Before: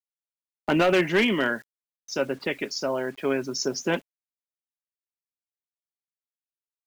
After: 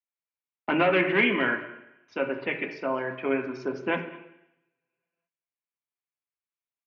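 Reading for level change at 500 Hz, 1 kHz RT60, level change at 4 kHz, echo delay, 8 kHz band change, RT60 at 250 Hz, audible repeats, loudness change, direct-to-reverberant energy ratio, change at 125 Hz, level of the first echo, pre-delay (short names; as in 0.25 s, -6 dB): -2.0 dB, 0.85 s, -6.0 dB, 0.214 s, under -25 dB, 0.85 s, 1, -1.0 dB, 4.0 dB, -4.0 dB, -21.0 dB, 3 ms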